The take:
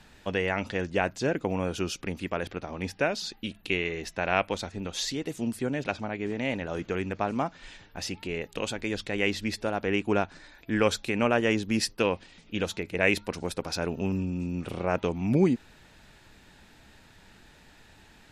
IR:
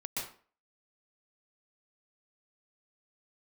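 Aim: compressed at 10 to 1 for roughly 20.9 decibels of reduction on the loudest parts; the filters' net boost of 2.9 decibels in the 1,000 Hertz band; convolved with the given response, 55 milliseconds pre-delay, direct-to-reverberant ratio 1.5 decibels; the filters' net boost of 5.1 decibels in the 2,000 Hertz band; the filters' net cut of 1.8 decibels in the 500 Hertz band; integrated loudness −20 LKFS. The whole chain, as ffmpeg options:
-filter_complex "[0:a]equalizer=frequency=500:width_type=o:gain=-3.5,equalizer=frequency=1000:width_type=o:gain=4,equalizer=frequency=2000:width_type=o:gain=5.5,acompressor=threshold=-36dB:ratio=10,asplit=2[link_01][link_02];[1:a]atrim=start_sample=2205,adelay=55[link_03];[link_02][link_03]afir=irnorm=-1:irlink=0,volume=-3.5dB[link_04];[link_01][link_04]amix=inputs=2:normalize=0,volume=18.5dB"

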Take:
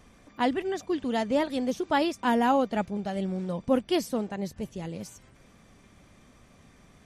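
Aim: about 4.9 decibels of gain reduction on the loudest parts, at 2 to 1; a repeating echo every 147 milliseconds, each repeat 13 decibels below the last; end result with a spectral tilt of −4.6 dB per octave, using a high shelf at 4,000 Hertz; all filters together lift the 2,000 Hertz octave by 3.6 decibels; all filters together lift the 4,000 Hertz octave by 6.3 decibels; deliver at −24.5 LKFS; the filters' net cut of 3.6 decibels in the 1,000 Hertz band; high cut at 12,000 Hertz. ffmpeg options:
ffmpeg -i in.wav -af "lowpass=12000,equalizer=frequency=1000:width_type=o:gain=-6,equalizer=frequency=2000:width_type=o:gain=4.5,highshelf=frequency=4000:gain=3,equalizer=frequency=4000:width_type=o:gain=5.5,acompressor=threshold=-28dB:ratio=2,aecho=1:1:147|294|441:0.224|0.0493|0.0108,volume=7dB" out.wav

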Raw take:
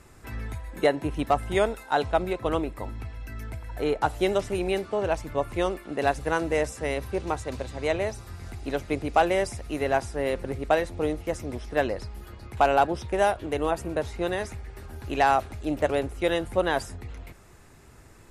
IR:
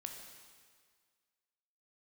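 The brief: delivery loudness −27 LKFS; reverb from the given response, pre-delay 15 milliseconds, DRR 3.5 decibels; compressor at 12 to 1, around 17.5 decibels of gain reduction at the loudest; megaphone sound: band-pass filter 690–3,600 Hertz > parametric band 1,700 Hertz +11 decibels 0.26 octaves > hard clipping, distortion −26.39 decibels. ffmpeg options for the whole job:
-filter_complex "[0:a]acompressor=threshold=-34dB:ratio=12,asplit=2[link_01][link_02];[1:a]atrim=start_sample=2205,adelay=15[link_03];[link_02][link_03]afir=irnorm=-1:irlink=0,volume=-0.5dB[link_04];[link_01][link_04]amix=inputs=2:normalize=0,highpass=690,lowpass=3600,equalizer=frequency=1700:width_type=o:width=0.26:gain=11,asoftclip=type=hard:threshold=-27dB,volume=15dB"

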